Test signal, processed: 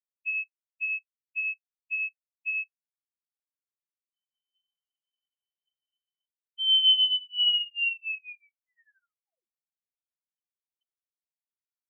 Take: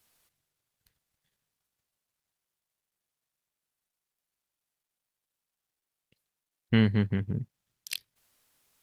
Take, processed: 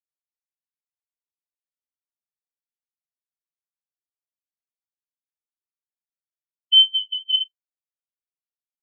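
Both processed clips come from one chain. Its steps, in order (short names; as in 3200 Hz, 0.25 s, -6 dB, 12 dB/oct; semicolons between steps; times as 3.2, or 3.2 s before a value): median filter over 41 samples; HPF 93 Hz; low shelf 300 Hz +8 dB; comb 6.7 ms, depth 76%; flutter echo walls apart 7.4 m, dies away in 0.25 s; compressor, threshold -26 dBFS; inverted band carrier 3200 Hz; spectral expander 4:1; gain +7.5 dB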